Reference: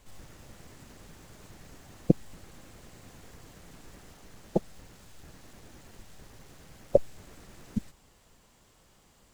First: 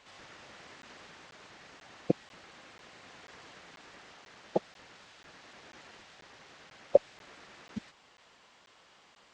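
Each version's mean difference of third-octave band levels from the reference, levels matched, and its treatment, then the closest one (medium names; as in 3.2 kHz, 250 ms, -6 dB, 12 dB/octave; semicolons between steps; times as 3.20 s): 7.0 dB: high-pass 1.4 kHz 6 dB/octave; gain riding within 4 dB 2 s; Gaussian low-pass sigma 1.8 samples; crackling interface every 0.49 s, samples 512, zero, from 0.82 s; trim +6 dB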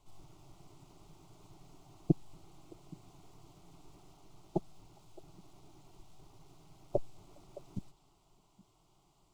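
4.0 dB: treble shelf 5.1 kHz -11 dB; static phaser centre 340 Hz, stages 8; on a send: repeats whose band climbs or falls 205 ms, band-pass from 3.7 kHz, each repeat -1.4 oct, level -10.5 dB; on the sum: trim -3.5 dB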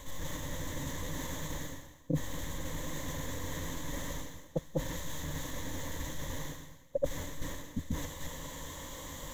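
13.0 dB: chunks repeated in reverse 212 ms, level -1 dB; rippled EQ curve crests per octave 1.1, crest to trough 12 dB; reverse; compression 5:1, threshold -48 dBFS, peak gain reduction 33 dB; reverse; trim +14 dB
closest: second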